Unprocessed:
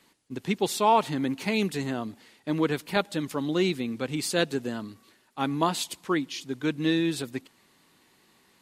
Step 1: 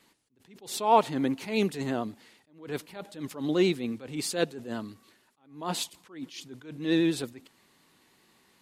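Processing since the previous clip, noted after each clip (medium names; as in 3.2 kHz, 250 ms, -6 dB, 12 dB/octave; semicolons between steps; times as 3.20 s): vibrato 11 Hz 31 cents; dynamic bell 530 Hz, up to +5 dB, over -35 dBFS, Q 0.83; attacks held to a fixed rise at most 130 dB/s; trim -1.5 dB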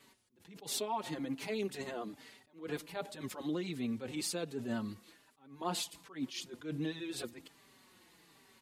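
peak limiter -21 dBFS, peak gain reduction 10.5 dB; compression 6:1, threshold -34 dBFS, peak gain reduction 9 dB; endless flanger 4.7 ms -1.3 Hz; trim +3.5 dB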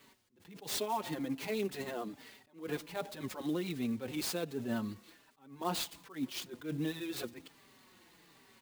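sampling jitter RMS 0.021 ms; trim +1.5 dB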